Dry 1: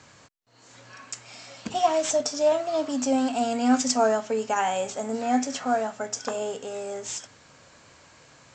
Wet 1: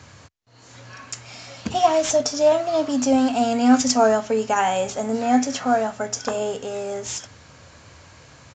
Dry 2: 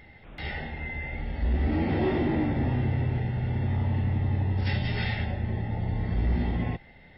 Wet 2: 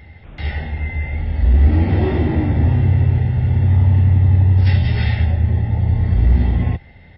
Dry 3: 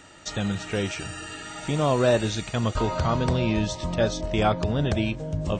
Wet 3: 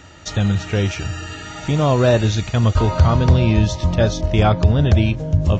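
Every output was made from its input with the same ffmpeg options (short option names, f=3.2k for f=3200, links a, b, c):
-af "equalizer=f=80:t=o:w=1.3:g=12,aresample=16000,aresample=44100,volume=4.5dB"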